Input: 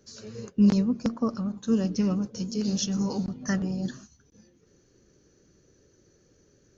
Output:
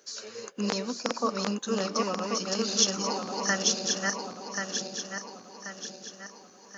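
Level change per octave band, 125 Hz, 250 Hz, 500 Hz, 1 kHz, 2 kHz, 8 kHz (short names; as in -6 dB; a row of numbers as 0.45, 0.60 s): -10.0 dB, -8.5 dB, +3.5 dB, +10.0 dB, +10.5 dB, n/a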